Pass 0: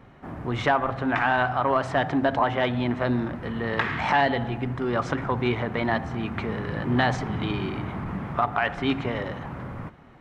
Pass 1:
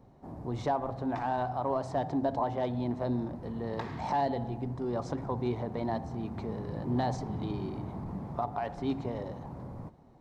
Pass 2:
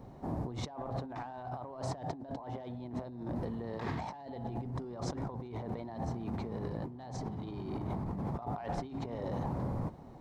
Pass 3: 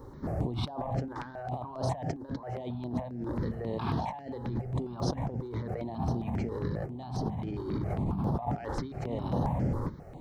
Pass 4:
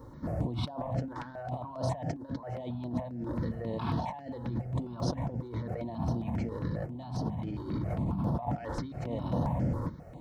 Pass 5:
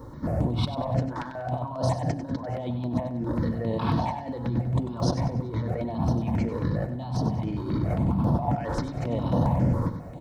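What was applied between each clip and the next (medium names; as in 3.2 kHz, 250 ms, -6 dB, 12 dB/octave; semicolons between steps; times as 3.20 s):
high-order bell 2 kHz -14 dB; trim -6.5 dB
compressor with a negative ratio -41 dBFS, ratio -1; trim +1 dB
stepped phaser 7.4 Hz 690–7500 Hz; trim +7.5 dB
comb of notches 400 Hz
feedback delay 96 ms, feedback 41%, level -11 dB; trim +6.5 dB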